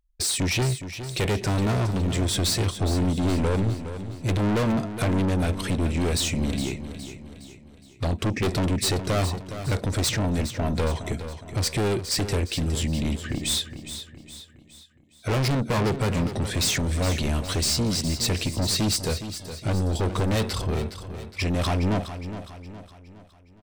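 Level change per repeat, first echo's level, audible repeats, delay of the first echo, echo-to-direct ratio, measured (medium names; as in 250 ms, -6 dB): -7.0 dB, -11.0 dB, 4, 414 ms, -10.0 dB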